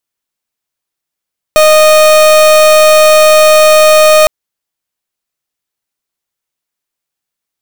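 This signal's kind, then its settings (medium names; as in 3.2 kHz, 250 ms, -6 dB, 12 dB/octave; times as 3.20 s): pulse 618 Hz, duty 37% -4.5 dBFS 2.71 s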